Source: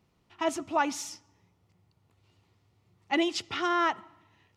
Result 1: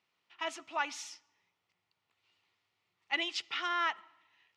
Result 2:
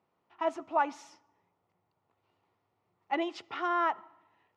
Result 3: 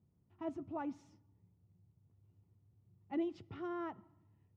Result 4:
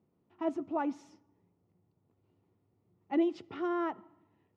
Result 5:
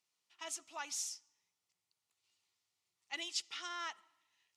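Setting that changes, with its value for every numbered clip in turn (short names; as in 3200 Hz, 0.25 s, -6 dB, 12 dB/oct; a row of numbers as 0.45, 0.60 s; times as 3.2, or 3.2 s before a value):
band-pass, frequency: 2600, 830, 110, 300, 8000 Hz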